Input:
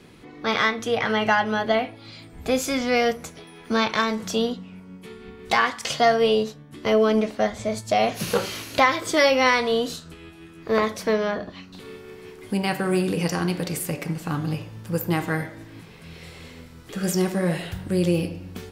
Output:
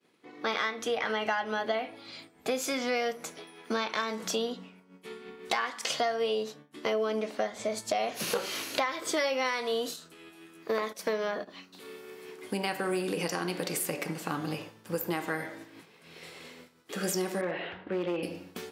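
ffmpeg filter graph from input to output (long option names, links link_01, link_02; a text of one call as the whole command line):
ffmpeg -i in.wav -filter_complex "[0:a]asettb=1/sr,asplit=3[link_01][link_02][link_03];[link_01]atrim=end=9.444[link_04];[link_02]atrim=start=9.44:end=12.29,asetpts=PTS-STARTPTS,afade=type=in:duration=0.004:curve=qsin,afade=type=out:start_time=2.846:duration=0.004:curve=qsin,agate=range=-15dB:threshold=-33dB:ratio=16:release=100:detection=peak,highshelf=frequency=9200:gain=9,acompressor=mode=upward:threshold=-29dB:ratio=2.5:attack=3.2:release=140:knee=2.83:detection=peak[link_05];[link_03]atrim=start=12.286[link_06];[link_04][link_05]acrossfade=duration=0.004:curve1=hsin:curve2=qsin[link_07];[link_07][link_06]acrossfade=duration=0.004:curve1=qsin:curve2=hsin,asettb=1/sr,asplit=3[link_08][link_09][link_10];[link_08]atrim=end=17.414[link_11];[link_09]atrim=start=17.41:end=18.23,asetpts=PTS-STARTPTS,afade=type=in:duration=0.004:curve=qsin,afade=type=out:start_time=0.816:duration=0.004:curve=qsin,lowpass=frequency=2900:width=0.5412,lowpass=frequency=2900:width=1.3066,equalizer=frequency=130:width_type=o:width=0.75:gain=-12.5,volume=19dB,asoftclip=hard,volume=-19dB[link_12];[link_10]atrim=start=18.226[link_13];[link_11][link_12]acrossfade=duration=0.004:curve1=hsin:curve2=qsin[link_14];[link_14][link_13]acrossfade=duration=0.004:curve1=qsin:curve2=hsin,highpass=290,agate=range=-33dB:threshold=-41dB:ratio=3:detection=peak,acompressor=threshold=-28dB:ratio=4" out.wav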